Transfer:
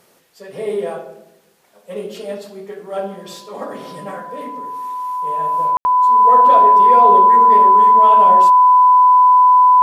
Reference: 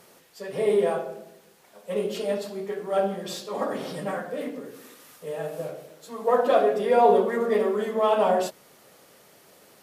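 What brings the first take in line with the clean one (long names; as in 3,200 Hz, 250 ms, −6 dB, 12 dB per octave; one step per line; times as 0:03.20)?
notch filter 1,000 Hz, Q 30
ambience match 0:05.77–0:05.85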